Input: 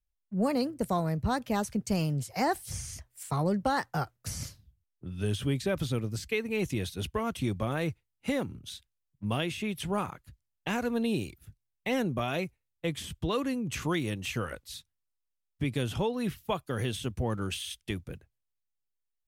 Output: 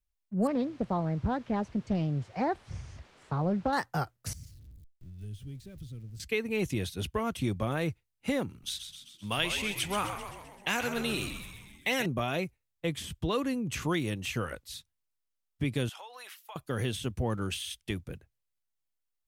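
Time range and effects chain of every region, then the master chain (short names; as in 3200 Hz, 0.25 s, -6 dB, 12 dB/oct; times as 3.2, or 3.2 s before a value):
0.47–3.73 requantised 8-bit, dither triangular + tape spacing loss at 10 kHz 30 dB + Doppler distortion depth 0.37 ms
4.33–6.2 zero-crossing step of -35.5 dBFS + passive tone stack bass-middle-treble 10-0-1
8.49–12.06 tilt shelf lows -7 dB, about 820 Hz + frequency-shifting echo 0.13 s, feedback 59%, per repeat -87 Hz, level -8 dB
15.89–16.56 HPF 740 Hz 24 dB/oct + compressor 10:1, threshold -42 dBFS
whole clip: dry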